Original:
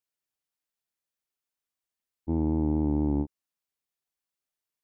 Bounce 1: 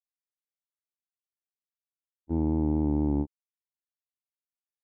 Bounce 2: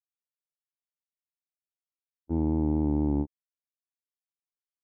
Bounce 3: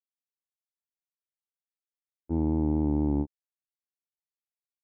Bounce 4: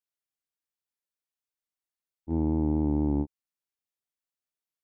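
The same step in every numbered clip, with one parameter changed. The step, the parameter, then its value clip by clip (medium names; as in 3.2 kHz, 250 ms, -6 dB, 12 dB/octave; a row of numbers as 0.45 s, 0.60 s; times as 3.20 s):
gate, range: -26 dB, -38 dB, -58 dB, -6 dB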